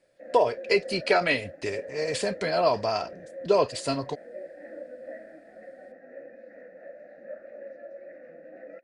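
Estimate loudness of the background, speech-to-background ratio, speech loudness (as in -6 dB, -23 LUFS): -43.0 LUFS, 16.5 dB, -26.5 LUFS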